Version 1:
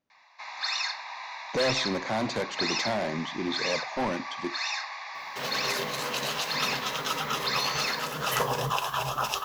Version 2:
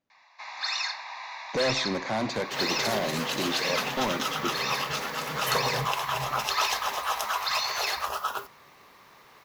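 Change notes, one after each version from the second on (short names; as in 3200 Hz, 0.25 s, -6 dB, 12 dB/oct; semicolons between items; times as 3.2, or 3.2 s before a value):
second sound: entry -2.85 s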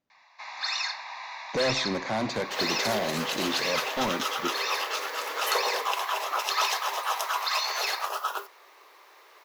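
second sound: add steep high-pass 330 Hz 48 dB/oct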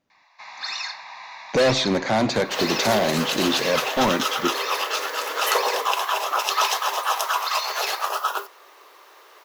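speech +8.5 dB; second sound +6.0 dB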